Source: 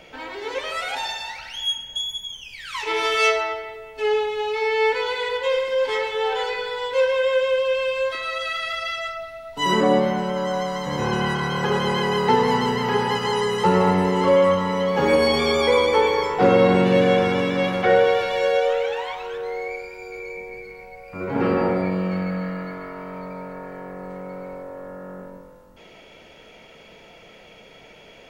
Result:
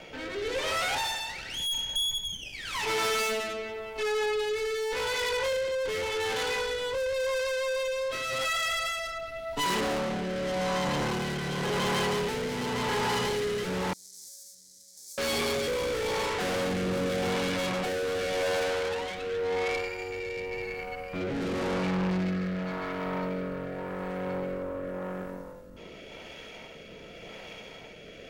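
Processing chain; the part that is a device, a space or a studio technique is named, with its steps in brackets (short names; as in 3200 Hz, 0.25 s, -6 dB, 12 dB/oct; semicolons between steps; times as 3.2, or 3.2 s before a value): overdriven rotary cabinet (tube stage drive 34 dB, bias 0.7; rotary speaker horn 0.9 Hz); 13.93–15.18 inverse Chebyshev high-pass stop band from 3000 Hz, stop band 40 dB; gain +8 dB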